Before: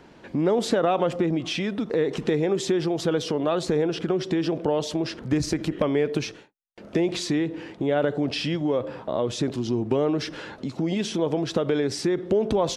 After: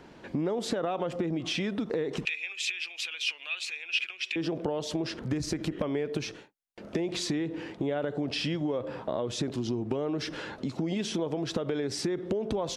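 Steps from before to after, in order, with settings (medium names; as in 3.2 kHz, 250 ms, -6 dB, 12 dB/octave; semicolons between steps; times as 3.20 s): compression, threshold -26 dBFS, peak gain reduction 9 dB; 2.25–4.36 s: resonant high-pass 2.5 kHz, resonance Q 12; trim -1 dB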